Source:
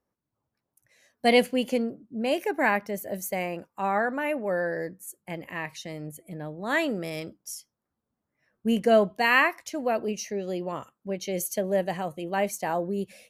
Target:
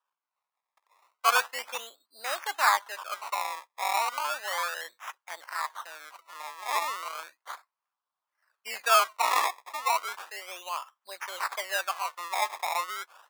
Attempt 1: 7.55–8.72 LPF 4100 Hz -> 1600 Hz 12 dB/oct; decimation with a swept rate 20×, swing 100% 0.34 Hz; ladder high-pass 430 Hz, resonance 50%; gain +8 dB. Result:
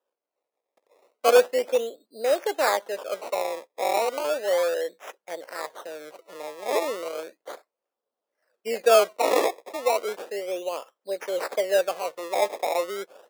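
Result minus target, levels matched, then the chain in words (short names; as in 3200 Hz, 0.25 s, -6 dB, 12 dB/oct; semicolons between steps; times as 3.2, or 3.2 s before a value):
500 Hz band +12.5 dB
7.55–8.72 LPF 4100 Hz -> 1600 Hz 12 dB/oct; decimation with a swept rate 20×, swing 100% 0.34 Hz; ladder high-pass 880 Hz, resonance 50%; gain +8 dB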